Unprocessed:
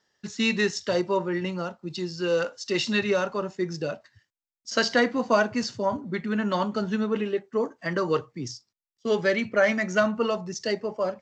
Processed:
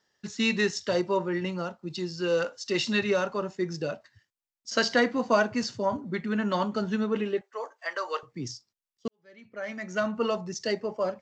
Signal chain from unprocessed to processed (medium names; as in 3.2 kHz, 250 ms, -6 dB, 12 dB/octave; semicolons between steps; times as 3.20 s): 7.41–8.23 s: high-pass 590 Hz 24 dB/octave; 9.08–10.27 s: fade in quadratic; trim -1.5 dB